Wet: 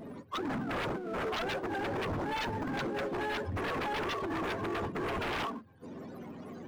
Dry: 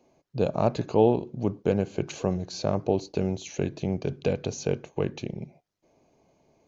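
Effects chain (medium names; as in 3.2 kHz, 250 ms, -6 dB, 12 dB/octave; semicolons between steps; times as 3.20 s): spectrum inverted on a logarithmic axis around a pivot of 400 Hz; compressor with a negative ratio -39 dBFS, ratio -1; peak limiter -29.5 dBFS, peak gain reduction 7.5 dB; wavefolder -38.5 dBFS; power-law waveshaper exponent 0.7; trim +8.5 dB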